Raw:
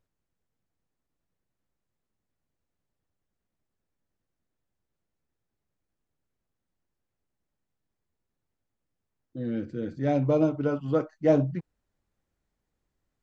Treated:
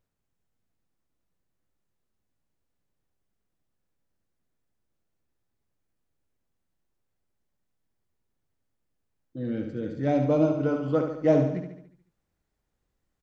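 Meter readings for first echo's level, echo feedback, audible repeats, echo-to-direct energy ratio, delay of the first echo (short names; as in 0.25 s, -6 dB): -6.5 dB, 53%, 6, -5.0 dB, 72 ms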